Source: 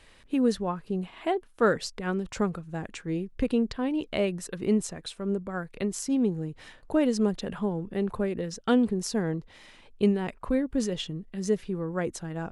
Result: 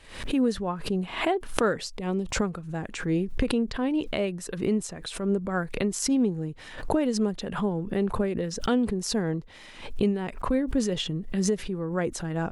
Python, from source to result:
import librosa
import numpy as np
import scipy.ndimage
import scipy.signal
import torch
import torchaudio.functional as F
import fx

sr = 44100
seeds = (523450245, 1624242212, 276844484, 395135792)

y = fx.recorder_agc(x, sr, target_db=-14.5, rise_db_per_s=8.7, max_gain_db=30)
y = fx.peak_eq(y, sr, hz=1500.0, db=-13.0, octaves=0.6, at=(1.89, 2.34))
y = fx.pre_swell(y, sr, db_per_s=94.0)
y = y * 10.0 ** (-2.0 / 20.0)